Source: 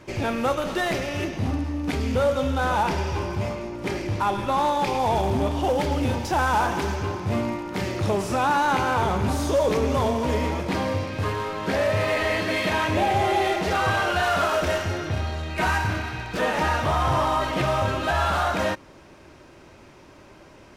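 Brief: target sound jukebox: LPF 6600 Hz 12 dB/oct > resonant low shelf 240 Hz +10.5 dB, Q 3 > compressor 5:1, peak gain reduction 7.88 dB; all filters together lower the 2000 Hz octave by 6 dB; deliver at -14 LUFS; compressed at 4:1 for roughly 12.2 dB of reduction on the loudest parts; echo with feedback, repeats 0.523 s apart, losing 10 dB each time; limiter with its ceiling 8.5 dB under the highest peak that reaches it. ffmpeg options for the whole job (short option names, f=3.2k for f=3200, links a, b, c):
-af "equalizer=f=2k:t=o:g=-8,acompressor=threshold=-34dB:ratio=4,alimiter=level_in=7.5dB:limit=-24dB:level=0:latency=1,volume=-7.5dB,lowpass=6.6k,lowshelf=f=240:t=q:w=3:g=10.5,aecho=1:1:523|1046|1569|2092:0.316|0.101|0.0324|0.0104,acompressor=threshold=-30dB:ratio=5,volume=21.5dB"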